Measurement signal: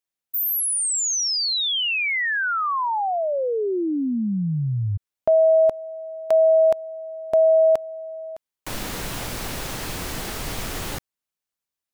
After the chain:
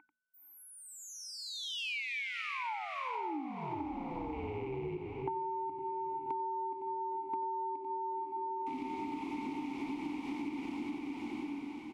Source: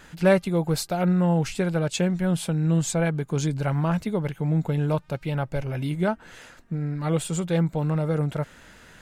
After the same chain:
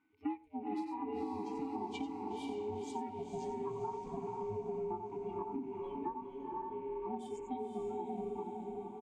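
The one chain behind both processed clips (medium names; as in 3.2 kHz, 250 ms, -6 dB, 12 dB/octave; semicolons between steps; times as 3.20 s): rattle on loud lows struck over -33 dBFS, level -30 dBFS; ring modulator 260 Hz; whistle 1.5 kHz -39 dBFS; vowel filter u; bass shelf 65 Hz +12 dB; delay 91 ms -7.5 dB; spectral noise reduction 22 dB; on a send: echo that smears into a reverb 496 ms, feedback 50%, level -5.5 dB; on the sum: compression 16:1, threshold -43 dBFS; hum notches 60/120/180/240 Hz; trim +8 dB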